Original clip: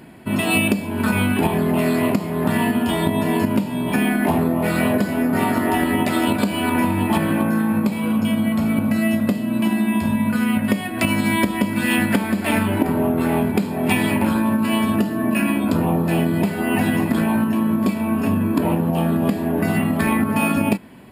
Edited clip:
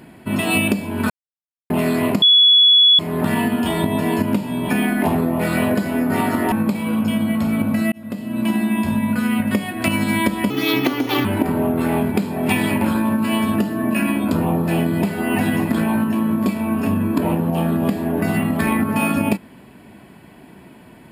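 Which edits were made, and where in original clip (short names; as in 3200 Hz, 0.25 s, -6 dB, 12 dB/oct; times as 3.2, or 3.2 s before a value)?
1.1–1.7 mute
2.22 add tone 3390 Hz -8 dBFS 0.77 s
5.75–7.69 cut
9.09–9.63 fade in
11.67–12.65 speed 131%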